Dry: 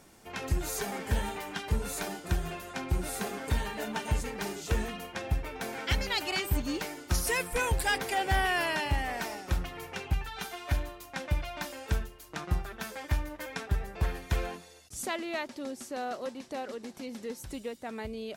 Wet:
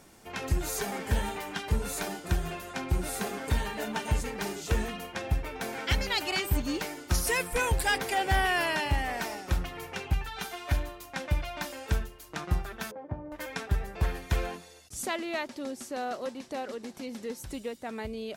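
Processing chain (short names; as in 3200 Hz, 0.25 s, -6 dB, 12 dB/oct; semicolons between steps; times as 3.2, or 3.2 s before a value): 12.91–13.32 Chebyshev band-pass 130–690 Hz, order 2; gain +1.5 dB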